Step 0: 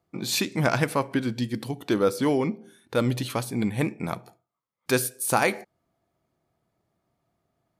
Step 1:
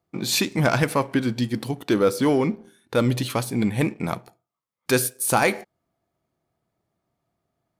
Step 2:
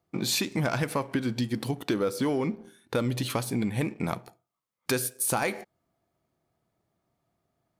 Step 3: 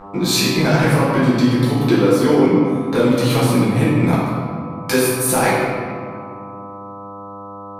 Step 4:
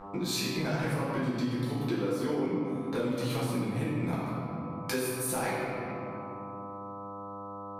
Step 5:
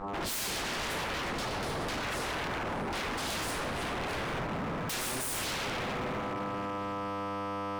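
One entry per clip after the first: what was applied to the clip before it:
waveshaping leveller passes 1
compression 4:1, threshold -25 dBFS, peak gain reduction 9.5 dB
mains buzz 100 Hz, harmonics 13, -45 dBFS 0 dB/octave; reverberation RT60 2.1 s, pre-delay 6 ms, DRR -9.5 dB; trim +2.5 dB
compression 2:1, threshold -27 dBFS, peak gain reduction 10 dB; trim -7.5 dB
resampled via 22.05 kHz; wavefolder -36.5 dBFS; trim +7 dB

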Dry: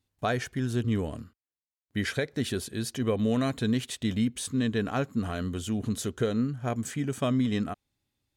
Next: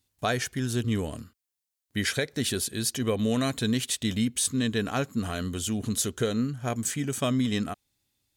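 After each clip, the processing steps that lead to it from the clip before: treble shelf 3.3 kHz +11 dB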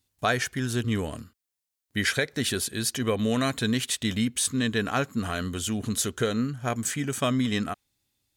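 dynamic bell 1.5 kHz, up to +5 dB, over -45 dBFS, Q 0.74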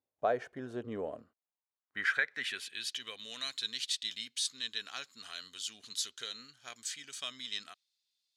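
band-pass sweep 580 Hz -> 4.3 kHz, 1.16–3.19 s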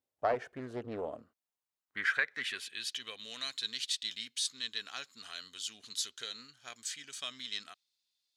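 loudspeaker Doppler distortion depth 0.32 ms

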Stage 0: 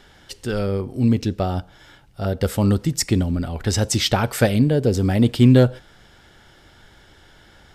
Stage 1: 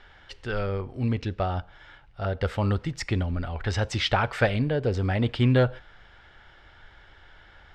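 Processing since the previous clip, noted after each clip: low-pass 2.4 kHz 12 dB/octave; peaking EQ 230 Hz -13.5 dB 2.7 oct; trim +2.5 dB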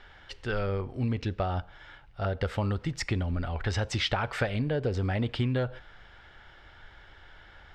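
compression 10:1, threshold -24 dBFS, peak gain reduction 9 dB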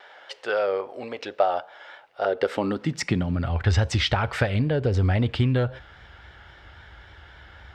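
high-pass sweep 570 Hz -> 65 Hz, 2.07–3.88 s; vibrato 3.7 Hz 45 cents; trim +4.5 dB

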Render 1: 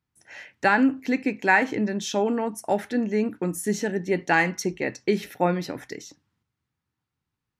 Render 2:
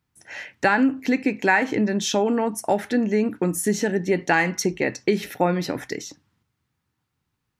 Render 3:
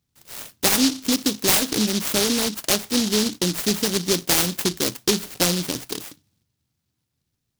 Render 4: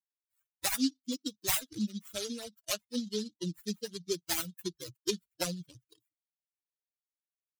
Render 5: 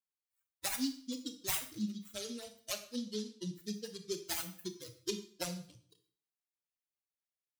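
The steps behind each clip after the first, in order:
compression 2:1, threshold -26 dBFS, peak gain reduction 7 dB; trim +6.5 dB
delay time shaken by noise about 4.5 kHz, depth 0.33 ms
expander on every frequency bin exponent 3; trim -6.5 dB
reverberation RT60 0.50 s, pre-delay 24 ms, DRR 7.5 dB; trim -5.5 dB

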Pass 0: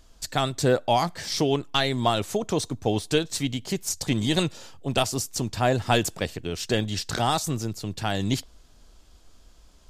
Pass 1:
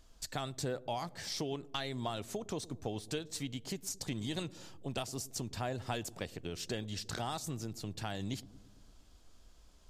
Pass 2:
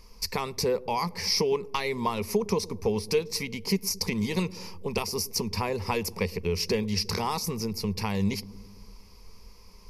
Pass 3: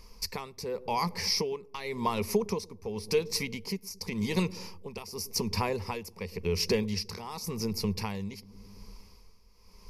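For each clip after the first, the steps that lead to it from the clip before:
compression 2.5:1, threshold -31 dBFS, peak gain reduction 10.5 dB; feedback echo behind a low-pass 112 ms, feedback 64%, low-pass 490 Hz, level -17.5 dB; trim -7 dB
rippled EQ curve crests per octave 0.85, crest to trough 16 dB; trim +8.5 dB
tremolo 0.9 Hz, depth 76%

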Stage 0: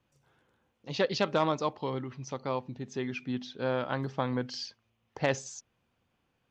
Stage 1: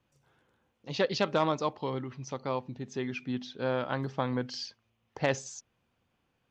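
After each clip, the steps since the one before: no audible change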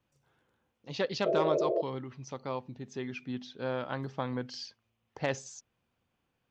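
painted sound noise, 1.25–1.82 s, 330–680 Hz -25 dBFS; trim -3.5 dB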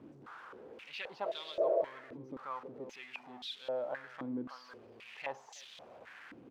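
jump at every zero crossing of -37 dBFS; speakerphone echo 320 ms, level -10 dB; step-sequenced band-pass 3.8 Hz 300–3500 Hz; trim +1.5 dB

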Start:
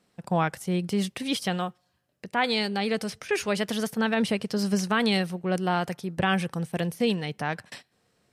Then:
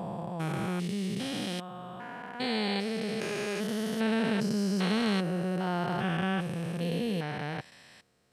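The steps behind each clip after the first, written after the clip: spectrogram pixelated in time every 400 ms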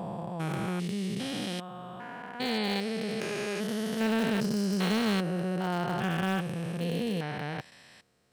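in parallel at -7.5 dB: bit crusher 4-bit; on the sum: hard clipper -20 dBFS, distortion -16 dB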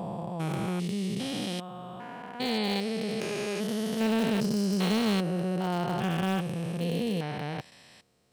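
peaking EQ 1.6 kHz -5.5 dB 0.71 oct; trim +1.5 dB

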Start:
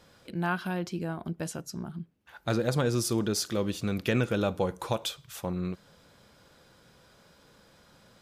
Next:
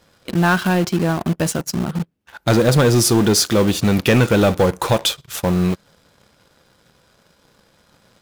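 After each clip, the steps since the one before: waveshaping leveller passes 2; in parallel at -6 dB: bit crusher 5-bit; on the sum: trim +4.5 dB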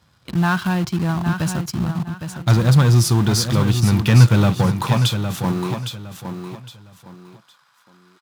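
graphic EQ 125/500/1000/4000 Hz +10/-7/+6/+3 dB; high-pass sweep 60 Hz -> 1.2 kHz, 3.77–7.19 s; on a send: feedback delay 811 ms, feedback 27%, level -8 dB; on the sum: trim -6.5 dB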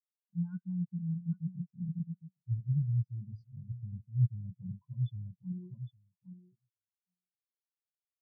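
reverse; compression 20:1, threshold -23 dBFS, peak gain reduction 18 dB; reverse; spectral contrast expander 4:1; trim -3 dB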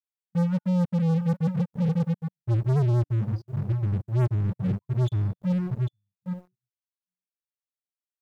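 de-hum 290.3 Hz, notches 31; waveshaping leveller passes 5

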